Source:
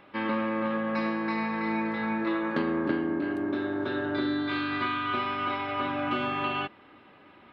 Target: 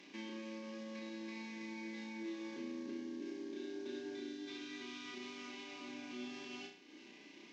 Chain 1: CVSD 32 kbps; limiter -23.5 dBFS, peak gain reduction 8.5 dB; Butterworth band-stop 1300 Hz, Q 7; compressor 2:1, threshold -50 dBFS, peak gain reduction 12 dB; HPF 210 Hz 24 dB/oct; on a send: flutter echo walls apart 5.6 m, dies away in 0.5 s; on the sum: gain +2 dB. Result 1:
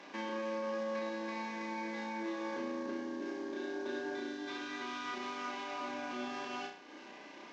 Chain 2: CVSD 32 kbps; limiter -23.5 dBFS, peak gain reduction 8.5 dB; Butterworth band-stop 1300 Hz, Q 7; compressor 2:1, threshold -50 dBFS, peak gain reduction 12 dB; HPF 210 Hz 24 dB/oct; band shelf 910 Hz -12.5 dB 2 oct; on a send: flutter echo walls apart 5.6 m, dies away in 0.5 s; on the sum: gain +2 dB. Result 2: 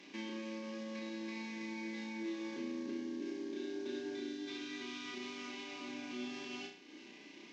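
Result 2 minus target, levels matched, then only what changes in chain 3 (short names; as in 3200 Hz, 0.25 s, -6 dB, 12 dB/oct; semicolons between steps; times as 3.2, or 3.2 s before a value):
compressor: peak gain reduction -3 dB
change: compressor 2:1, threshold -56.5 dBFS, peak gain reduction 15 dB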